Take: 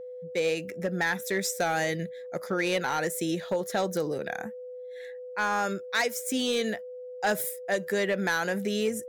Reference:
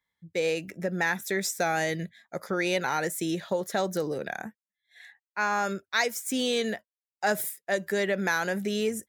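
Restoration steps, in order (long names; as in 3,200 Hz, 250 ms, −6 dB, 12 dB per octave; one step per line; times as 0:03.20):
clipped peaks rebuilt −19.5 dBFS
notch filter 500 Hz, Q 30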